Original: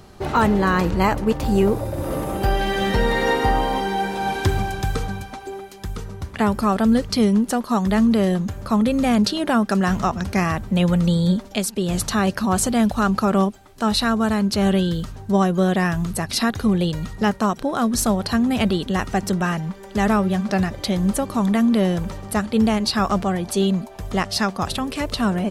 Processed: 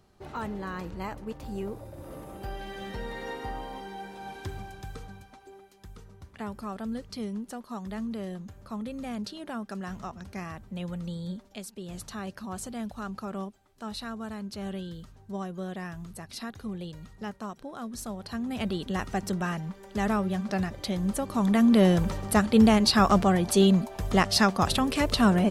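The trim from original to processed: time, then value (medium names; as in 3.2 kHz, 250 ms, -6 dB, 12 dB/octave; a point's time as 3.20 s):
18.10 s -17.5 dB
18.88 s -8.5 dB
21.13 s -8.5 dB
21.86 s -0.5 dB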